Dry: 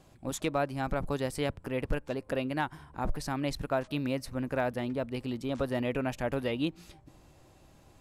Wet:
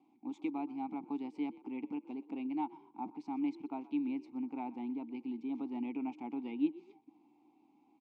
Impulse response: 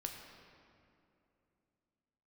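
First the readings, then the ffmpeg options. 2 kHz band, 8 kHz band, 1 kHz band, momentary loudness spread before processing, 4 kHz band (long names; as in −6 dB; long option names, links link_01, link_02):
−18.0 dB, below −30 dB, −7.5 dB, 4 LU, below −15 dB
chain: -filter_complex "[0:a]asplit=3[link_01][link_02][link_03];[link_01]bandpass=frequency=300:width_type=q:width=8,volume=0dB[link_04];[link_02]bandpass=frequency=870:width_type=q:width=8,volume=-6dB[link_05];[link_03]bandpass=frequency=2240:width_type=q:width=8,volume=-9dB[link_06];[link_04][link_05][link_06]amix=inputs=3:normalize=0,highpass=220,equalizer=frequency=230:width_type=q:width=4:gain=9,equalizer=frequency=740:width_type=q:width=4:gain=6,equalizer=frequency=1800:width_type=q:width=4:gain=-9,lowpass=frequency=7500:width=0.5412,lowpass=frequency=7500:width=1.3066,asplit=3[link_07][link_08][link_09];[link_08]adelay=123,afreqshift=42,volume=-20dB[link_10];[link_09]adelay=246,afreqshift=84,volume=-30.2dB[link_11];[link_07][link_10][link_11]amix=inputs=3:normalize=0,volume=1.5dB"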